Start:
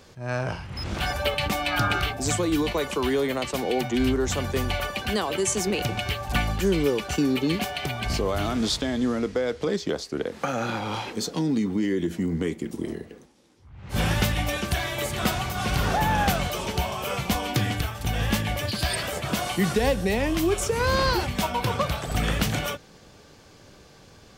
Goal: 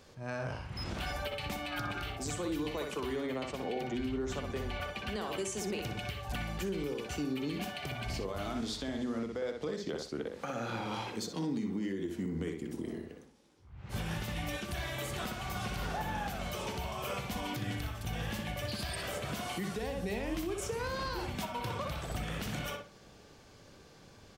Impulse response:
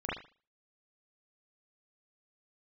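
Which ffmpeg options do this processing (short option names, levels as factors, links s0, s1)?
-filter_complex "[0:a]asettb=1/sr,asplit=3[s0][s1][s2];[s0]atrim=end=3.164[s3];[s1]atrim=start=3.16:end=5.21,asetpts=PTS-STARTPTS,afade=t=in:d=0.004:c=qsin,afade=t=out:st=2.046:d=0.004:c=qsin,highshelf=f=6800:g=-10[s4];[s2]atrim=start=5.206[s5];[s3][s4]acrossfade=d=0.004:c1=hsin:c2=qsin[s6];[s6][s5]acrossfade=d=0.004:c1=qsin:c2=hsin,asplit=2[s7][s8];[s8]adelay=61,lowpass=f=2900:p=1,volume=0.631,asplit=2[s9][s10];[s10]adelay=61,lowpass=f=2900:p=1,volume=0.27,asplit=2[s11][s12];[s12]adelay=61,lowpass=f=2900:p=1,volume=0.27,asplit=2[s13][s14];[s14]adelay=61,lowpass=f=2900:p=1,volume=0.27[s15];[s7][s9][s11][s13][s15]amix=inputs=5:normalize=0,alimiter=limit=0.1:level=0:latency=1:release=284,volume=0.447"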